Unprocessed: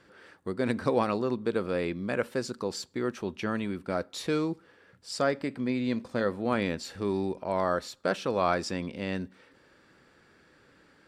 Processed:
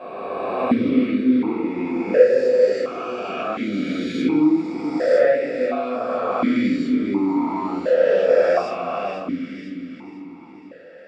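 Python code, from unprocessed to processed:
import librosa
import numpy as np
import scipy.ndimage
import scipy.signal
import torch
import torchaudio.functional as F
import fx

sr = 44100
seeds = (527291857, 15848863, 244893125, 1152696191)

y = fx.spec_swells(x, sr, rise_s=2.6)
y = fx.rider(y, sr, range_db=10, speed_s=2.0)
y = fx.echo_feedback(y, sr, ms=497, feedback_pct=55, wet_db=-10)
y = fx.room_shoebox(y, sr, seeds[0], volume_m3=330.0, walls='furnished', distance_m=6.9)
y = fx.vowel_held(y, sr, hz=1.4)
y = y * 10.0 ** (2.5 / 20.0)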